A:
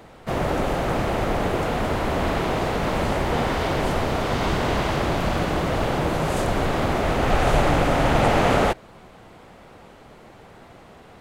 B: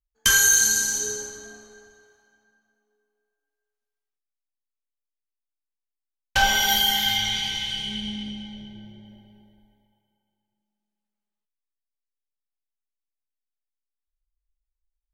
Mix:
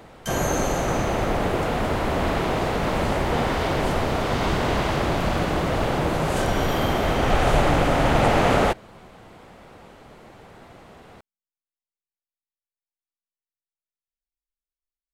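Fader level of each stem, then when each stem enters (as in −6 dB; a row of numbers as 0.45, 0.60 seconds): 0.0, −16.5 decibels; 0.00, 0.00 seconds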